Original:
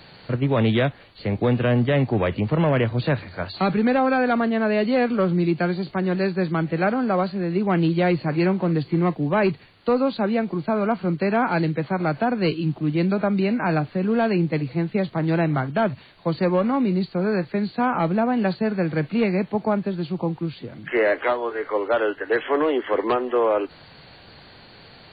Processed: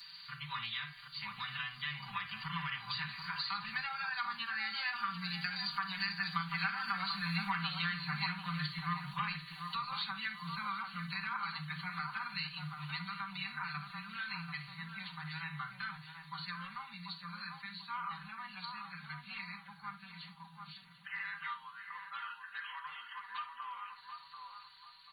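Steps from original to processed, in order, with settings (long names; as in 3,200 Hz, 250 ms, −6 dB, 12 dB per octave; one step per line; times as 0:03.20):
source passing by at 0:07.04, 10 m/s, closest 5.2 metres
elliptic band-stop filter 150–1,100 Hz, stop band 40 dB
bass and treble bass −15 dB, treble +14 dB
comb filter 5.1 ms, depth 100%
hum removal 123.1 Hz, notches 36
downward compressor 4 to 1, threshold −49 dBFS, peak gain reduction 23 dB
feedback echo with a band-pass in the loop 739 ms, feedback 50%, band-pass 550 Hz, level −3 dB
on a send at −6 dB: convolution reverb, pre-delay 4 ms
on the sum: level +11.5 dB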